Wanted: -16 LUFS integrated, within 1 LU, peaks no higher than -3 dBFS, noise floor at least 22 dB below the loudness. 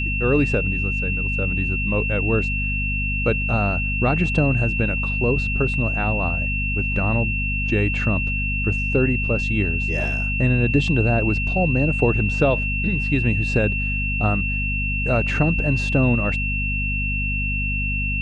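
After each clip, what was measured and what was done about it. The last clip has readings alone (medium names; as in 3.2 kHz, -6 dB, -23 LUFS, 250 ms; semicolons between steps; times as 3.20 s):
hum 50 Hz; highest harmonic 250 Hz; hum level -23 dBFS; steady tone 2.7 kHz; tone level -24 dBFS; loudness -21.0 LUFS; peak level -5.0 dBFS; loudness target -16.0 LUFS
-> hum notches 50/100/150/200/250 Hz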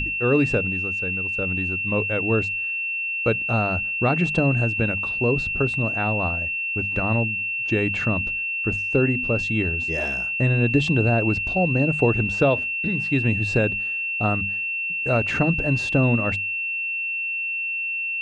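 hum not found; steady tone 2.7 kHz; tone level -24 dBFS
-> band-stop 2.7 kHz, Q 30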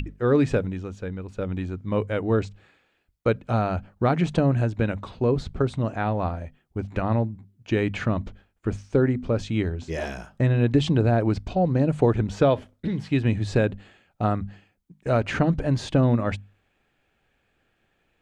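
steady tone not found; loudness -25.0 LUFS; peak level -7.5 dBFS; loudness target -16.0 LUFS
-> trim +9 dB; peak limiter -3 dBFS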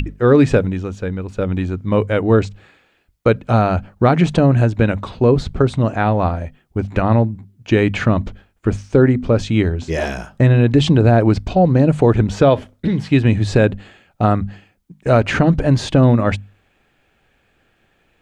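loudness -16.5 LUFS; peak level -3.0 dBFS; noise floor -61 dBFS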